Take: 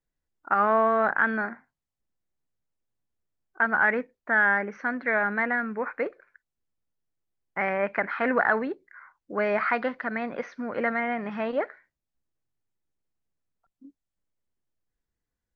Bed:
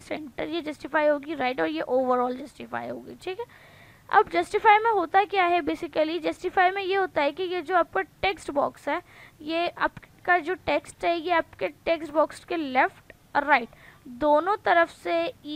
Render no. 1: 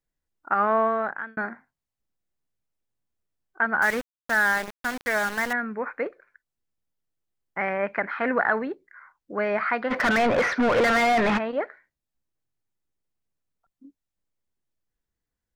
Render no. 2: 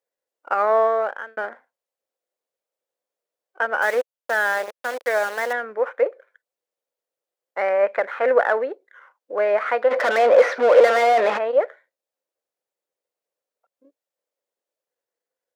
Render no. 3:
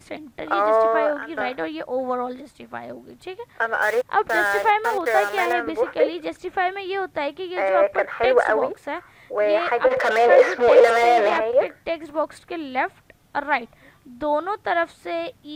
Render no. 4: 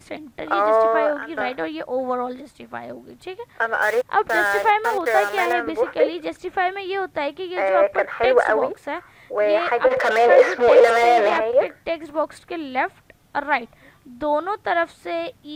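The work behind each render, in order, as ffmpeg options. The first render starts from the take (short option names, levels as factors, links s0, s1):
-filter_complex "[0:a]asettb=1/sr,asplit=3[s0][s1][s2];[s0]atrim=end=3.824[s3];[s1]atrim=start=3.82:end=5.53,asetpts=PTS-STARTPTS,afade=t=in:d=0.004:c=qsin,afade=t=out:st=1.706:d=0.004:c=qsin,aeval=exprs='val(0)*gte(abs(val(0)),0.0335)':c=same[s4];[s2]atrim=start=5.526[s5];[s3][s4]acrossfade=d=0.004:c1=hsin:c2=qsin[s6];[s6][s5]acrossfade=d=0.004:c1=qsin:c2=hsin,asplit=3[s7][s8][s9];[s7]afade=t=out:st=9.9:d=0.02[s10];[s8]asplit=2[s11][s12];[s12]highpass=f=720:p=1,volume=56.2,asoftclip=type=tanh:threshold=0.237[s13];[s11][s13]amix=inputs=2:normalize=0,lowpass=f=1800:p=1,volume=0.501,afade=t=in:st=9.9:d=0.02,afade=t=out:st=11.37:d=0.02[s14];[s9]afade=t=in:st=11.37:d=0.02[s15];[s10][s14][s15]amix=inputs=3:normalize=0,asplit=2[s16][s17];[s16]atrim=end=1.37,asetpts=PTS-STARTPTS,afade=t=out:st=0.83:d=0.54[s18];[s17]atrim=start=1.37,asetpts=PTS-STARTPTS,afade=t=in:d=0.004:c=hsin[s19];[s18][s19]concat=n=2:v=0:a=1"
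-af "aeval=exprs='if(lt(val(0),0),0.708*val(0),val(0))':c=same,highpass=f=520:t=q:w=4.9"
-filter_complex "[1:a]volume=0.841[s0];[0:a][s0]amix=inputs=2:normalize=0"
-af "volume=1.12,alimiter=limit=0.708:level=0:latency=1"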